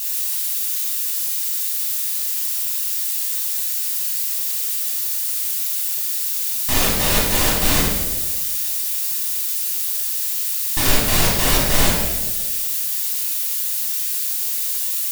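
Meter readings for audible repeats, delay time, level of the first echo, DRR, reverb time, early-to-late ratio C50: no echo audible, no echo audible, no echo audible, −6.0 dB, 1.4 s, 0.0 dB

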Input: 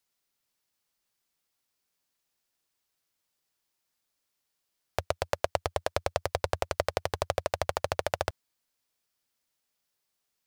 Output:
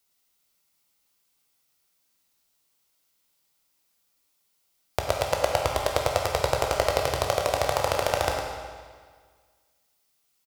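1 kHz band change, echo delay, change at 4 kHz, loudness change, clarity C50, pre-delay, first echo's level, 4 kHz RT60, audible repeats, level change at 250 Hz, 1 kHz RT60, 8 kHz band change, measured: +7.0 dB, 107 ms, +7.5 dB, +6.0 dB, 1.0 dB, 14 ms, −8.0 dB, 1.6 s, 1, +6.5 dB, 1.7 s, +8.5 dB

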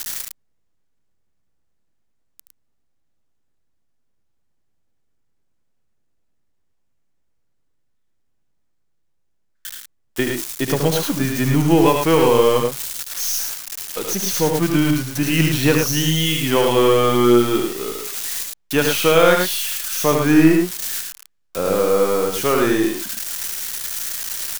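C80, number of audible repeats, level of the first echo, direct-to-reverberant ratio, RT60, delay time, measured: no reverb audible, 2, −6.5 dB, no reverb audible, no reverb audible, 75 ms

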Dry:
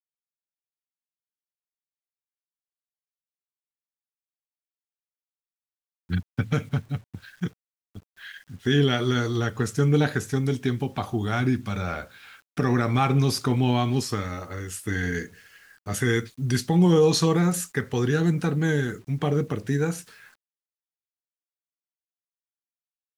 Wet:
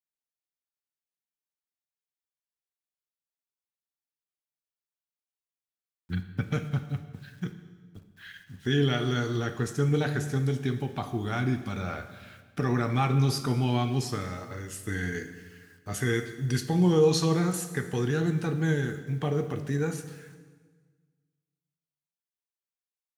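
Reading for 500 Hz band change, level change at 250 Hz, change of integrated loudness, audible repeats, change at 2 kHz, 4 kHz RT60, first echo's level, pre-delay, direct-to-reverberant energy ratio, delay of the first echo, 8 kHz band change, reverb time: −3.5 dB, −4.5 dB, −4.0 dB, no echo audible, −4.5 dB, 1.3 s, no echo audible, 3 ms, 8.0 dB, no echo audible, −4.5 dB, 1.5 s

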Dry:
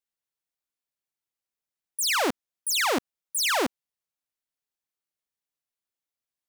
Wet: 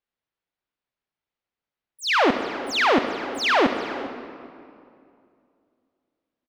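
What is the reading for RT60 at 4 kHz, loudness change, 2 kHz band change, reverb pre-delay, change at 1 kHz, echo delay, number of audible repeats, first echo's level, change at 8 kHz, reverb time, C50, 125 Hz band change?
1.5 s, +3.5 dB, +6.0 dB, 30 ms, +7.5 dB, 401 ms, 1, −17.5 dB, −11.5 dB, 2.4 s, 7.0 dB, +8.5 dB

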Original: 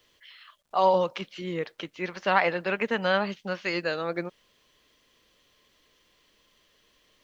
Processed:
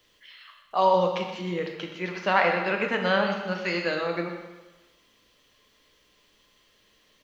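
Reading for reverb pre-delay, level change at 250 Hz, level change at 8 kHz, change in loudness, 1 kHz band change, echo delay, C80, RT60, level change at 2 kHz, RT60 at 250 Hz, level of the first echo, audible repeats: 8 ms, +2.0 dB, can't be measured, +1.5 dB, +1.5 dB, 124 ms, 6.0 dB, 1.2 s, +2.0 dB, 1.1 s, −11.5 dB, 1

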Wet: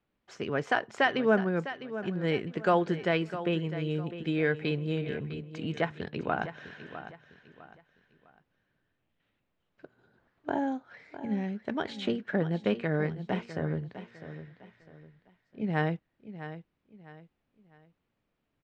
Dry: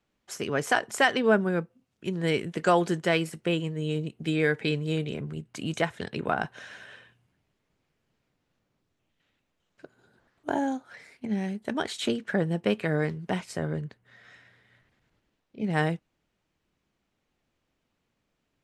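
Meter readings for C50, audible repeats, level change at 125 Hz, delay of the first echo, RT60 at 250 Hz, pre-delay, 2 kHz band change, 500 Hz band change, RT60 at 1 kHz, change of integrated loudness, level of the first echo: no reverb audible, 3, −2.0 dB, 654 ms, no reverb audible, no reverb audible, −3.5 dB, −2.5 dB, no reverb audible, −2.5 dB, −12.5 dB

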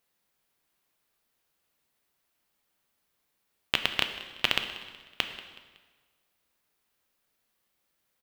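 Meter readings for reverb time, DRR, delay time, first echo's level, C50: 1.4 s, 6.5 dB, 186 ms, −18.0 dB, 8.5 dB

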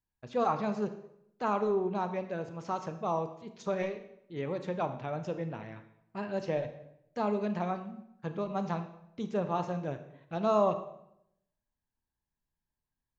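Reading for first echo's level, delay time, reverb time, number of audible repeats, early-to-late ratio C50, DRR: no echo audible, no echo audible, 0.75 s, no echo audible, 11.0 dB, 8.5 dB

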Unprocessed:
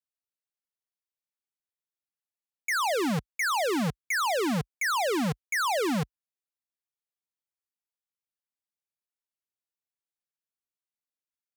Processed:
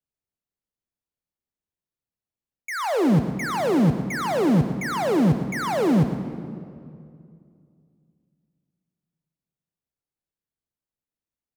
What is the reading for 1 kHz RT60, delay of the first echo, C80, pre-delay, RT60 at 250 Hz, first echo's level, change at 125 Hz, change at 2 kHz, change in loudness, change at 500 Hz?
2.2 s, 114 ms, 8.0 dB, 34 ms, 2.7 s, −12.0 dB, +12.0 dB, −2.0 dB, +5.0 dB, +6.0 dB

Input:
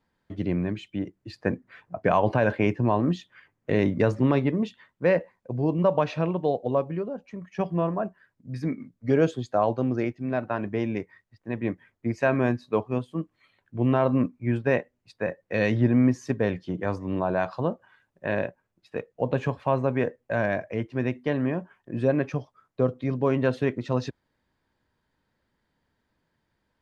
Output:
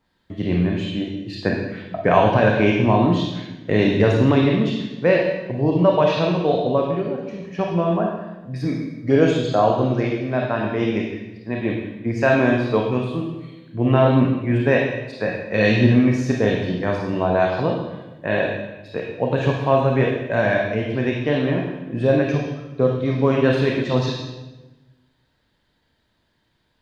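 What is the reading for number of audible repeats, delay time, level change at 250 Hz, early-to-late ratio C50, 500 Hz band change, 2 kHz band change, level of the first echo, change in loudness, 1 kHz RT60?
no echo audible, no echo audible, +6.0 dB, 1.5 dB, +7.0 dB, +8.0 dB, no echo audible, +6.5 dB, 1.0 s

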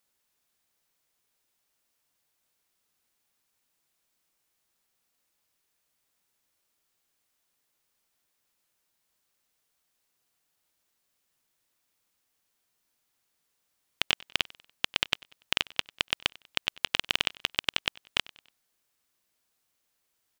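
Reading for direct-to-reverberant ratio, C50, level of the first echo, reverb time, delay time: no reverb audible, no reverb audible, −23.0 dB, no reverb audible, 96 ms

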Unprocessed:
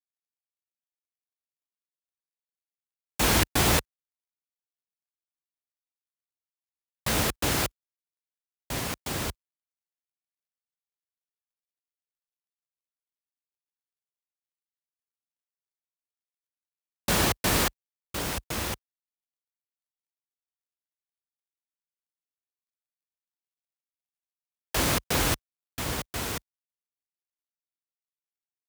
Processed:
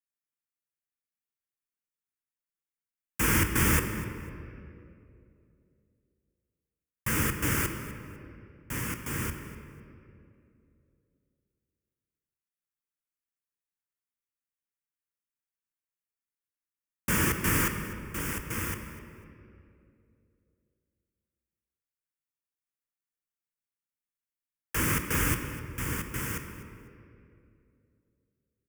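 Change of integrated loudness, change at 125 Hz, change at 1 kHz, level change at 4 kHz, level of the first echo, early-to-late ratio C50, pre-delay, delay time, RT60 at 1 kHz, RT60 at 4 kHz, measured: −2.0 dB, +1.0 dB, −4.5 dB, −9.5 dB, −17.0 dB, 7.0 dB, 4 ms, 250 ms, 2.3 s, 1.4 s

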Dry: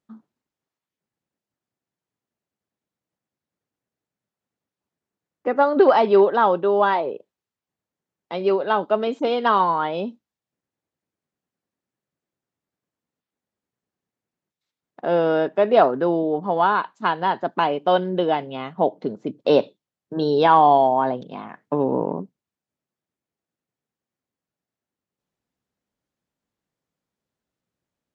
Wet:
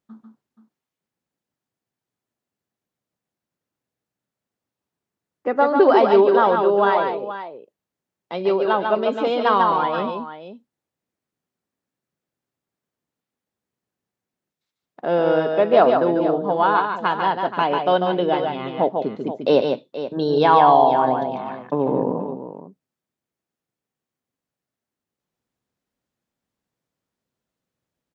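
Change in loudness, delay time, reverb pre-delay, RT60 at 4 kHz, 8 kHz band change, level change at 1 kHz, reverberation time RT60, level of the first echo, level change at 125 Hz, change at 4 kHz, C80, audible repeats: +1.0 dB, 144 ms, no reverb audible, no reverb audible, can't be measured, +1.5 dB, no reverb audible, −5.0 dB, +1.5 dB, +1.5 dB, no reverb audible, 2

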